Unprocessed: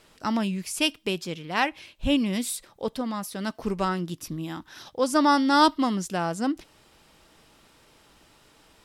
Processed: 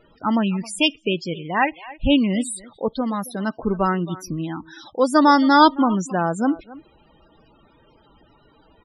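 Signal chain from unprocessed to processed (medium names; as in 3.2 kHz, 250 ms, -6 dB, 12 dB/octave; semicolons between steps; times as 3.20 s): speakerphone echo 270 ms, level -17 dB; loudest bins only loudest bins 32; trim +6 dB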